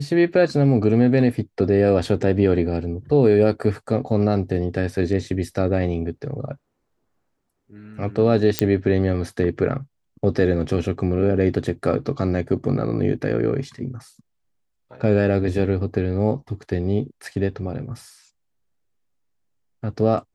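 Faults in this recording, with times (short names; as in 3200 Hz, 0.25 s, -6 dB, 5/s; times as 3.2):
8.59 pop -1 dBFS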